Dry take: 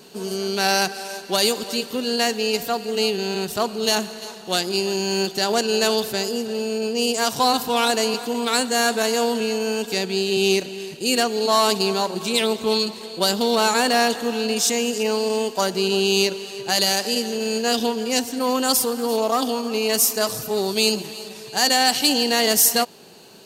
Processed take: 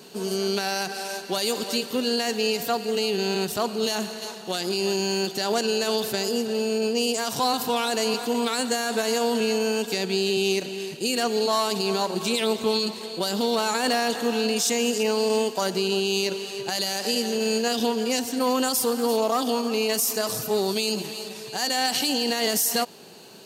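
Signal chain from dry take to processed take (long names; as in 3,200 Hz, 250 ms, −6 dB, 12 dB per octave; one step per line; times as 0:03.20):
high-pass filter 82 Hz
brickwall limiter −13.5 dBFS, peak gain reduction 9 dB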